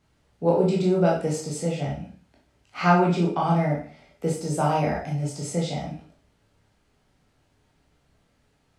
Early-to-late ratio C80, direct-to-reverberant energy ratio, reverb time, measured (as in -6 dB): 10.5 dB, -3.0 dB, 0.50 s